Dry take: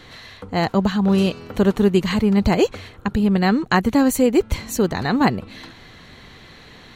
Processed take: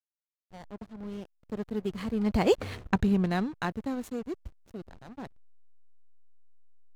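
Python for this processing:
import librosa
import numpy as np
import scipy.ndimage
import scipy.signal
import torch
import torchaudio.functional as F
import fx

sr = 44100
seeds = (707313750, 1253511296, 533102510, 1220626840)

y = fx.doppler_pass(x, sr, speed_mps=16, closest_m=2.1, pass_at_s=2.78)
y = fx.backlash(y, sr, play_db=-37.0)
y = y * librosa.db_to_amplitude(2.0)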